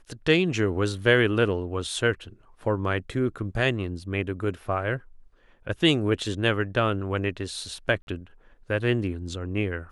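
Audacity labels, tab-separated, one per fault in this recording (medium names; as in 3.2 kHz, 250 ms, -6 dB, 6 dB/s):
8.020000	8.070000	dropout 51 ms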